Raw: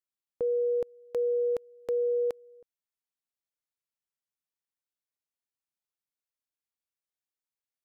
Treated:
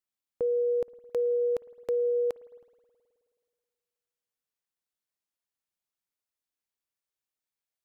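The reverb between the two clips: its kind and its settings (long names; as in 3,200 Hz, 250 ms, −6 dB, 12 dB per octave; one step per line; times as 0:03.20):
spring reverb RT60 2.2 s, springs 53 ms, chirp 20 ms, DRR 18 dB
level +1 dB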